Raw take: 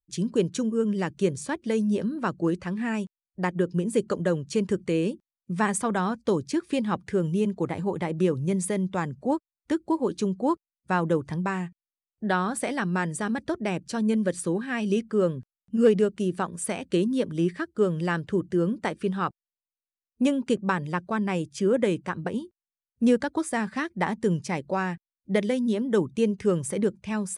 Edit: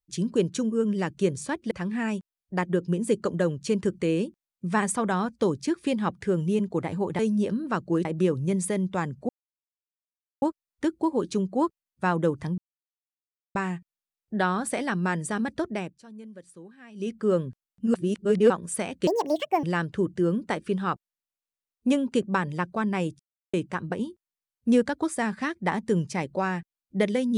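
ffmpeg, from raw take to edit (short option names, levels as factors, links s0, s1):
-filter_complex "[0:a]asplit=14[s0][s1][s2][s3][s4][s5][s6][s7][s8][s9][s10][s11][s12][s13];[s0]atrim=end=1.712[s14];[s1]atrim=start=2.568:end=8.052[s15];[s2]atrim=start=1.708:end=2.572[s16];[s3]atrim=start=8.048:end=9.29,asetpts=PTS-STARTPTS,afade=t=out:st=1.238:d=0.004:c=hsin,apad=pad_dur=1.13[s17];[s4]atrim=start=9.29:end=11.45,asetpts=PTS-STARTPTS,afade=t=in:d=0.004:c=hsin,afade=t=out:st=2.156:d=0.004:c=hsin,apad=pad_dur=0.97[s18];[s5]atrim=start=11.45:end=13.87,asetpts=PTS-STARTPTS,afade=t=in:d=0.004:c=hsin,afade=t=out:st=2.02:d=0.4:c=qsin:silence=0.105925[s19];[s6]atrim=start=13.87:end=14.84,asetpts=PTS-STARTPTS,volume=0.106[s20];[s7]atrim=start=14.84:end=15.842,asetpts=PTS-STARTPTS,afade=t=in:d=0.4:c=qsin:silence=0.105925[s21];[s8]atrim=start=15.838:end=16.402,asetpts=PTS-STARTPTS,areverse[s22];[s9]atrim=start=16.398:end=16.974[s23];[s10]atrim=start=16.97:end=17.98,asetpts=PTS-STARTPTS,asetrate=78939,aresample=44100,atrim=end_sample=24883,asetpts=PTS-STARTPTS[s24];[s11]atrim=start=17.976:end=21.54,asetpts=PTS-STARTPTS,afade=t=out:st=3.56:d=0.004:c=hsin[s25];[s12]atrim=start=21.54:end=21.88,asetpts=PTS-STARTPTS,volume=0[s26];[s13]atrim=start=21.88,asetpts=PTS-STARTPTS,afade=t=in:d=0.004:c=hsin[s27];[s14][s15]acrossfade=d=0.004:c1=hsin:c2=hsin[s28];[s28][s16]acrossfade=d=0.004:c1=hsin:c2=hsin[s29];[s17][s18][s19][s20][s21]concat=n=5:v=0:a=1[s30];[s29][s30]acrossfade=d=0.004:c1=hsin:c2=hsin[s31];[s31][s22]acrossfade=d=0.004:c1=hsin:c2=hsin[s32];[s32][s23]acrossfade=d=0.004:c1=hsin:c2=hsin[s33];[s33][s24]acrossfade=d=0.004:c1=hsin:c2=hsin[s34];[s25][s26][s27]concat=n=3:v=0:a=1[s35];[s34][s35]acrossfade=d=0.004:c1=hsin:c2=hsin"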